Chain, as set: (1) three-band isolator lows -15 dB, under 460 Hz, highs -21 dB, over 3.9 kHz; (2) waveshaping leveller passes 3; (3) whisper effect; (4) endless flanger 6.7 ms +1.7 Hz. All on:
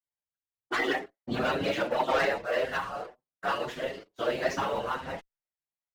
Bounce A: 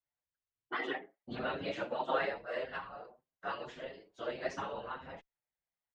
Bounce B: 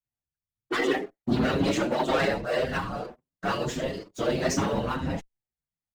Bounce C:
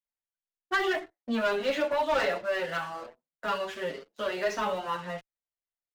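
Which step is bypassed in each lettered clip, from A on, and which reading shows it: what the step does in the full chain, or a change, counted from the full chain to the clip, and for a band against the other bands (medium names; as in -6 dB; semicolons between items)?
2, momentary loudness spread change +4 LU; 1, 125 Hz band +9.0 dB; 3, 125 Hz band -5.5 dB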